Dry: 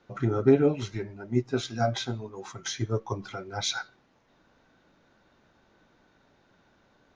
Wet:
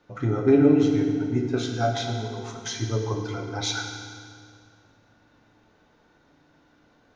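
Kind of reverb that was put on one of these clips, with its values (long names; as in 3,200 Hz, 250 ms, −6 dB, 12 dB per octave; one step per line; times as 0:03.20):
feedback delay network reverb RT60 2.2 s, low-frequency decay 1.3×, high-frequency decay 0.85×, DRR 1.5 dB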